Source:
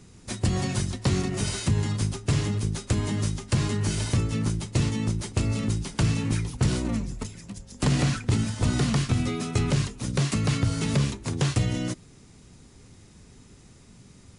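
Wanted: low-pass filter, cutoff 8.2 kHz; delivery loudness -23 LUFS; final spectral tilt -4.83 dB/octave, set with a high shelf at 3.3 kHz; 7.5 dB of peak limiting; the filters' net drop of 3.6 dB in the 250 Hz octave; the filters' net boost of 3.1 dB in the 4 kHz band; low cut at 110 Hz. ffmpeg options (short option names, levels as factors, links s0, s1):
-af "highpass=110,lowpass=8200,equalizer=f=250:t=o:g=-4.5,highshelf=f=3300:g=-4,equalizer=f=4000:t=o:g=7,volume=2.51,alimiter=limit=0.251:level=0:latency=1"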